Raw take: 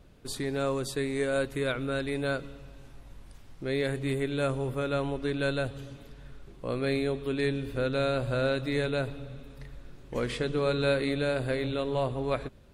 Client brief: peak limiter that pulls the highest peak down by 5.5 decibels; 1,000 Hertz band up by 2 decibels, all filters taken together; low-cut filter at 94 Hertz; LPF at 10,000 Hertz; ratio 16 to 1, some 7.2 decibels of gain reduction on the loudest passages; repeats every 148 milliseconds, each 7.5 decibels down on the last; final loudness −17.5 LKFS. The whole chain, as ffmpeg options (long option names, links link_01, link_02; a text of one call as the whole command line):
ffmpeg -i in.wav -af "highpass=94,lowpass=10000,equalizer=frequency=1000:width_type=o:gain=3,acompressor=threshold=-29dB:ratio=16,alimiter=level_in=2dB:limit=-24dB:level=0:latency=1,volume=-2dB,aecho=1:1:148|296|444|592|740:0.422|0.177|0.0744|0.0312|0.0131,volume=18dB" out.wav